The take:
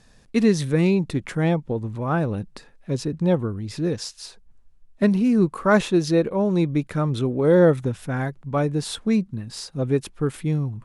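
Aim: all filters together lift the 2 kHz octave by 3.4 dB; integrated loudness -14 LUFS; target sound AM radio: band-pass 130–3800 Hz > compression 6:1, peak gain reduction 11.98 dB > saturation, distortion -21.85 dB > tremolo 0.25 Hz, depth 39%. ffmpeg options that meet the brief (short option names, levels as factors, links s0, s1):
-af "highpass=130,lowpass=3800,equalizer=f=2000:t=o:g=5,acompressor=threshold=0.0708:ratio=6,asoftclip=threshold=0.133,tremolo=f=0.25:d=0.39,volume=7.94"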